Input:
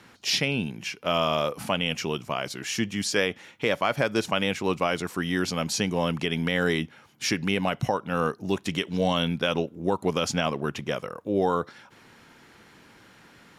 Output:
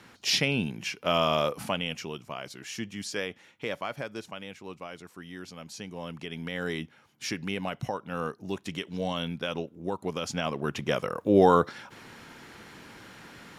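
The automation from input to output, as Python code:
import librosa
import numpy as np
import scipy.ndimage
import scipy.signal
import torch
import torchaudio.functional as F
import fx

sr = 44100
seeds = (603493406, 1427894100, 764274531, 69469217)

y = fx.gain(x, sr, db=fx.line((1.49, -0.5), (2.1, -8.5), (3.76, -8.5), (4.43, -16.0), (5.61, -16.0), (6.82, -7.0), (10.24, -7.0), (11.19, 5.0)))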